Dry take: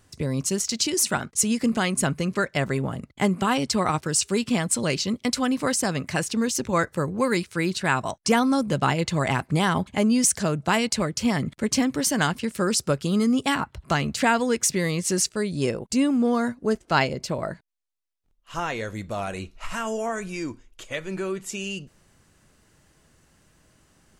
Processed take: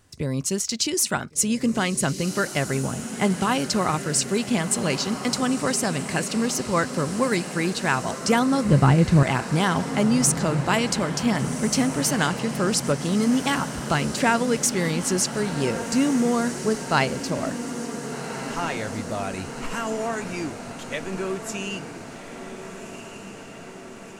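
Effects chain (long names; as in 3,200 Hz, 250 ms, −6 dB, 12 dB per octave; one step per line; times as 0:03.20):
0:08.65–0:09.23: RIAA equalisation playback
feedback delay with all-pass diffusion 1,500 ms, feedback 65%, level −10 dB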